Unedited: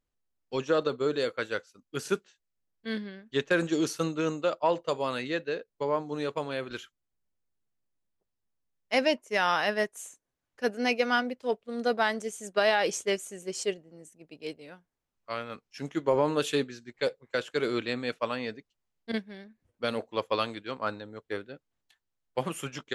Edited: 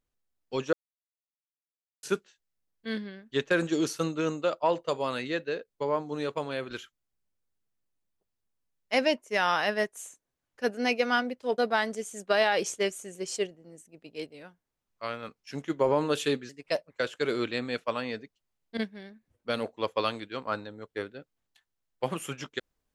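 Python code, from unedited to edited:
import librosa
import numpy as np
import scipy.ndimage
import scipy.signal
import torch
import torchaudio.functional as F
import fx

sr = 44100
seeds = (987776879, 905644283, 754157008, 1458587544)

y = fx.edit(x, sr, fx.silence(start_s=0.73, length_s=1.3),
    fx.cut(start_s=11.58, length_s=0.27),
    fx.speed_span(start_s=16.76, length_s=0.49, speed=1.18), tone=tone)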